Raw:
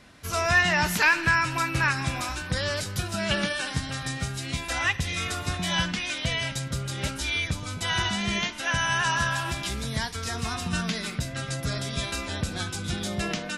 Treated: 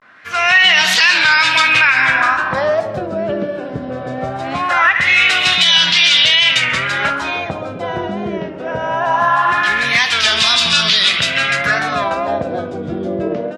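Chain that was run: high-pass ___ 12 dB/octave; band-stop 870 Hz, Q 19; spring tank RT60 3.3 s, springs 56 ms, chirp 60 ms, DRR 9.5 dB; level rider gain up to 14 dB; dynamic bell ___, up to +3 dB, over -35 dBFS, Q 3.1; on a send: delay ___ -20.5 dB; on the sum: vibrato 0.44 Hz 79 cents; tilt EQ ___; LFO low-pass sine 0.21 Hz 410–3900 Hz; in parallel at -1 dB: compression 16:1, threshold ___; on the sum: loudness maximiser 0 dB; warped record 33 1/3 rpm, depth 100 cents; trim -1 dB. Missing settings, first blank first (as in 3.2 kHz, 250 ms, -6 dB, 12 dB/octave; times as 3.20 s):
87 Hz, 700 Hz, 132 ms, +4.5 dB/octave, -21 dBFS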